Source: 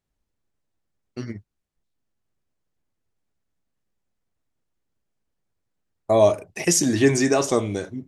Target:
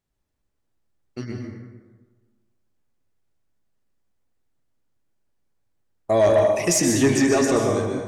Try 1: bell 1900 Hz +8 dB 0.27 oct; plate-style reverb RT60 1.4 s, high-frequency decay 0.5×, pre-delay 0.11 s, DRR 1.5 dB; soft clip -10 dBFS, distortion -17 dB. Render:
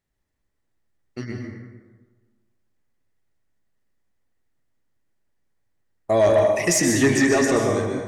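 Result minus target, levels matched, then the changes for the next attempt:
2000 Hz band +4.0 dB
remove: bell 1900 Hz +8 dB 0.27 oct

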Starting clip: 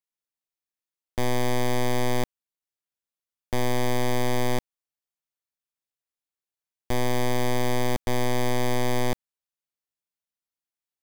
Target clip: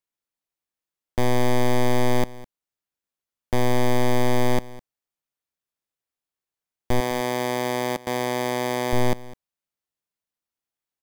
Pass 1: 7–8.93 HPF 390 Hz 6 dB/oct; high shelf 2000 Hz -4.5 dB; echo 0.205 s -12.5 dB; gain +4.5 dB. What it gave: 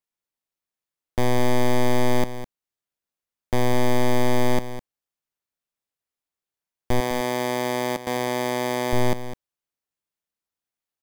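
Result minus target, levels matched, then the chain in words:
echo-to-direct +7 dB
7–8.93 HPF 390 Hz 6 dB/oct; high shelf 2000 Hz -4.5 dB; echo 0.205 s -19.5 dB; gain +4.5 dB

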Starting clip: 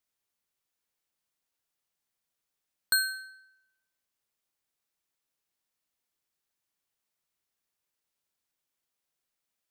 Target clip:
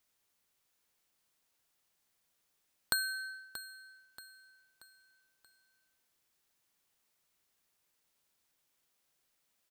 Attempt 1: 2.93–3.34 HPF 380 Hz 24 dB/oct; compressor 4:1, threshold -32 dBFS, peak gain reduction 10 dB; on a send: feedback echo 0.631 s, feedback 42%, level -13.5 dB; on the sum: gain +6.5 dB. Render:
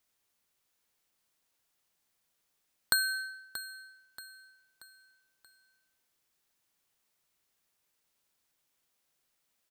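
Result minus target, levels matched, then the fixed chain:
compressor: peak gain reduction -5 dB
2.93–3.34 HPF 380 Hz 24 dB/oct; compressor 4:1, threshold -38.5 dBFS, peak gain reduction 14.5 dB; on a send: feedback echo 0.631 s, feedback 42%, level -13.5 dB; on the sum: gain +6.5 dB

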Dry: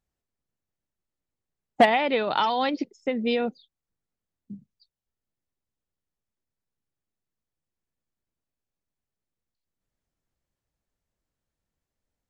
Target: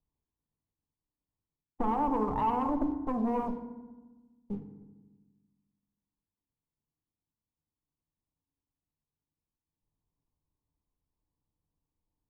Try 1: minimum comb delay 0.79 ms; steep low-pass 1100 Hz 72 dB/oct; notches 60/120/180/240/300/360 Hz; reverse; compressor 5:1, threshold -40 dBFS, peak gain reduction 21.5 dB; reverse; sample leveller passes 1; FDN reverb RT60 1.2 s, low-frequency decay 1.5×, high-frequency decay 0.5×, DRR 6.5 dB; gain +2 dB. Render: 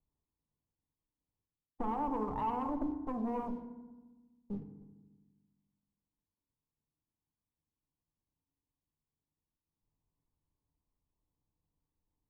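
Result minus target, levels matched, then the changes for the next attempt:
compressor: peak gain reduction +6 dB
change: compressor 5:1, threshold -32.5 dBFS, peak gain reduction 15.5 dB

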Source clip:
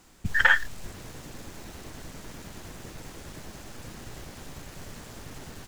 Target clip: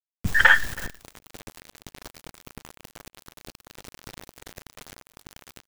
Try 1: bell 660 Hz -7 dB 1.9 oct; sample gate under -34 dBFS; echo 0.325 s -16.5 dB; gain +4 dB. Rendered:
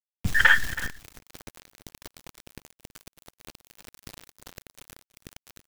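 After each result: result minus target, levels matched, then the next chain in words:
echo-to-direct +7 dB; 500 Hz band -3.0 dB
bell 660 Hz -7 dB 1.9 oct; sample gate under -34 dBFS; echo 0.325 s -23.5 dB; gain +4 dB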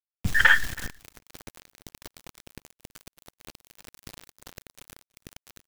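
500 Hz band -3.5 dB
sample gate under -34 dBFS; echo 0.325 s -23.5 dB; gain +4 dB

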